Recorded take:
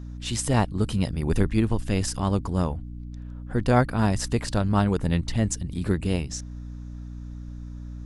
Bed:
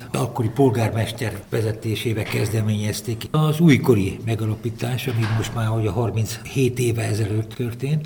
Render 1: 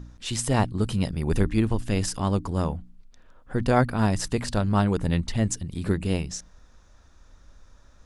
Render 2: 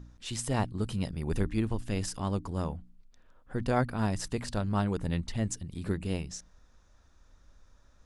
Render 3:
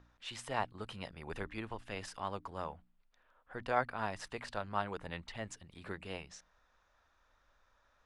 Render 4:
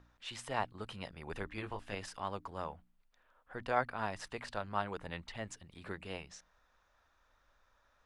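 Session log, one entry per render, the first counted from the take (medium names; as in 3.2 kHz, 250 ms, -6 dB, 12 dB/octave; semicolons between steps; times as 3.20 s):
de-hum 60 Hz, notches 5
trim -7 dB
three-band isolator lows -17 dB, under 550 Hz, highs -15 dB, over 3.6 kHz
1.54–1.95 s: doubling 20 ms -4.5 dB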